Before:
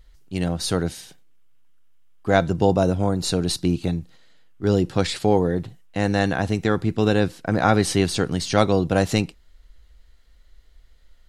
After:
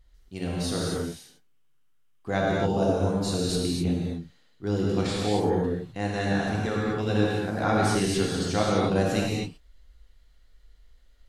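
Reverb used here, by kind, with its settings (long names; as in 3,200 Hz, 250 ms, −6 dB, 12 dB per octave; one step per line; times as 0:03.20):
reverb whose tail is shaped and stops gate 290 ms flat, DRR −4.5 dB
level −10 dB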